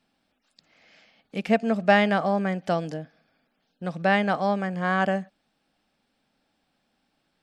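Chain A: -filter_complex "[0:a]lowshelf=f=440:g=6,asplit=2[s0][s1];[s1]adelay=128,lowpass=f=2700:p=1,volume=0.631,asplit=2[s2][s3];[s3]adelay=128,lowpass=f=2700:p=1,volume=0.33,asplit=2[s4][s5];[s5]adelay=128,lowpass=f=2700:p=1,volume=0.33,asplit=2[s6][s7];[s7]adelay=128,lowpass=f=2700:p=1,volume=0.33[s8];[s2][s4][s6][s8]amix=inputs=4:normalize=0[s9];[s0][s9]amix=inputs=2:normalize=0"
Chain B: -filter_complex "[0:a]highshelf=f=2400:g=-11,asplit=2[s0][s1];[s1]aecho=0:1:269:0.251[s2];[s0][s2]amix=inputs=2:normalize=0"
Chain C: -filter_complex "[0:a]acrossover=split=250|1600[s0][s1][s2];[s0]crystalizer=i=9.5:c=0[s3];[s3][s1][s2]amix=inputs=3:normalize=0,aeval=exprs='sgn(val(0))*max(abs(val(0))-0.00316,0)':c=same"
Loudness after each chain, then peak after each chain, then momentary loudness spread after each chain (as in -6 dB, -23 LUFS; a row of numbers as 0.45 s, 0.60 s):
-20.5 LUFS, -25.5 LUFS, -24.5 LUFS; -2.5 dBFS, -7.0 dBFS, -7.5 dBFS; 15 LU, 15 LU, 16 LU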